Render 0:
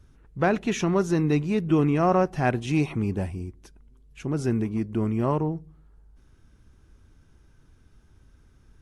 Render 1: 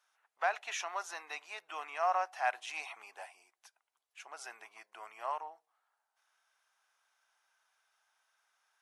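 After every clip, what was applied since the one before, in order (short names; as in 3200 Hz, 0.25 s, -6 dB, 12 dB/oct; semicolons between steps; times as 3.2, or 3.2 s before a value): Chebyshev high-pass 710 Hz, order 4; gain -5 dB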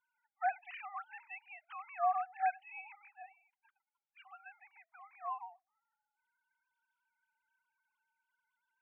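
sine-wave speech; gain -2 dB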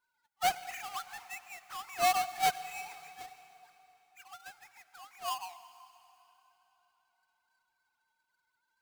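half-waves squared off; on a send at -14 dB: reverb RT60 3.6 s, pre-delay 90 ms; on the sum: gain +1 dB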